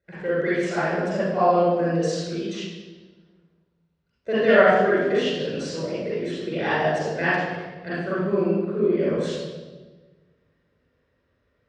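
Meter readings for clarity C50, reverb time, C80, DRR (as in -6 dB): -5.5 dB, 1.3 s, 0.5 dB, -9.5 dB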